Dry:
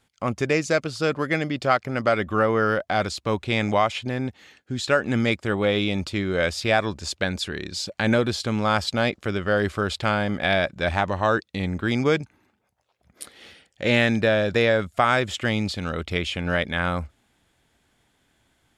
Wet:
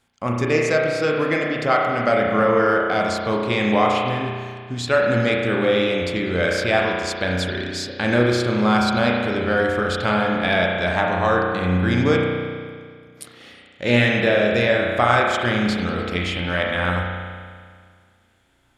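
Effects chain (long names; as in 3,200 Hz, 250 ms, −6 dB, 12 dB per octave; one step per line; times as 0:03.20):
mains-hum notches 50/100/150 Hz
spring reverb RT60 1.9 s, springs 33 ms, chirp 70 ms, DRR −1.5 dB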